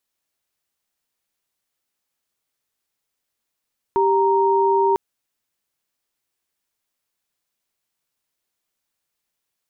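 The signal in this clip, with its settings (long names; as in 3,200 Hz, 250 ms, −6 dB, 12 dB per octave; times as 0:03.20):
held notes G4/A#5 sine, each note −17 dBFS 1.00 s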